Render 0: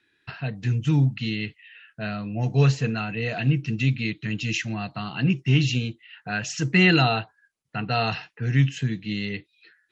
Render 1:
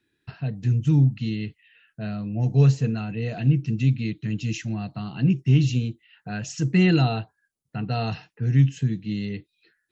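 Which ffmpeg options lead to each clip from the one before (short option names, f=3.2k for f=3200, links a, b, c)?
-af "equalizer=f=2k:w=0.32:g=-12.5,volume=3dB"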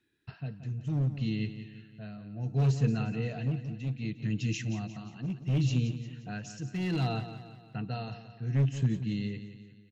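-filter_complex "[0:a]volume=14.5dB,asoftclip=hard,volume=-14.5dB,tremolo=f=0.67:d=0.72,asplit=2[a][b];[b]aecho=0:1:176|352|528|704|880:0.266|0.13|0.0639|0.0313|0.0153[c];[a][c]amix=inputs=2:normalize=0,volume=-3.5dB"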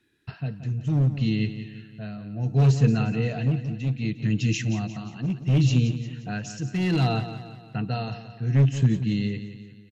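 -af "aresample=32000,aresample=44100,volume=7.5dB"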